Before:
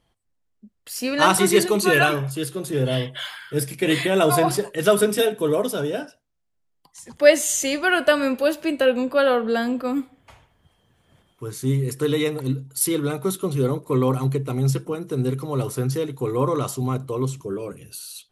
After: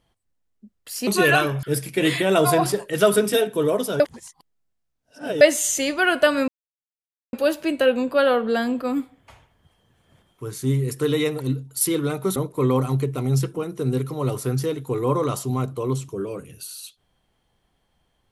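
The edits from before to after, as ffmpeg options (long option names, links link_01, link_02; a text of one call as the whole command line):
ffmpeg -i in.wav -filter_complex "[0:a]asplit=7[link_01][link_02][link_03][link_04][link_05][link_06][link_07];[link_01]atrim=end=1.072[link_08];[link_02]atrim=start=1.748:end=2.312[link_09];[link_03]atrim=start=3.478:end=5.852[link_10];[link_04]atrim=start=5.848:end=7.262,asetpts=PTS-STARTPTS,areverse[link_11];[link_05]atrim=start=7.258:end=8.33,asetpts=PTS-STARTPTS,afade=type=out:start_time=1.068:duration=0.004:curve=hsin,apad=pad_dur=0.85[link_12];[link_06]atrim=start=8.33:end=13.362,asetpts=PTS-STARTPTS,afade=type=in:duration=0.004:curve=hsin[link_13];[link_07]atrim=start=13.678[link_14];[link_08][link_09]acrossfade=duration=0.004:curve1=hsin:curve2=hsin[link_15];[link_15][link_10]acrossfade=duration=0.004:curve1=hsin:curve2=hsin[link_16];[link_16][link_11]acrossfade=duration=0.004:curve1=hsin:curve2=hsin[link_17];[link_12][link_13]concat=n=2:v=0:a=1[link_18];[link_17][link_18]acrossfade=duration=0.004:curve1=hsin:curve2=hsin[link_19];[link_19][link_14]acrossfade=duration=0.004:curve1=hsin:curve2=hsin" out.wav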